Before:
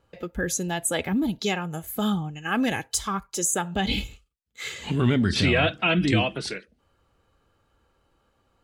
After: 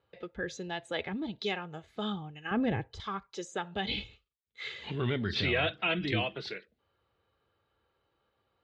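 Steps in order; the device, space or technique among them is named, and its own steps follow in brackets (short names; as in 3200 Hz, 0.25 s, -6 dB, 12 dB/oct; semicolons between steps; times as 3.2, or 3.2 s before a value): guitar cabinet (speaker cabinet 84–4600 Hz, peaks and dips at 170 Hz -5 dB, 260 Hz -7 dB, 420 Hz +3 dB, 2000 Hz +3 dB, 3700 Hz +5 dB); 2.51–3 tilt -4.5 dB/oct; gain -8 dB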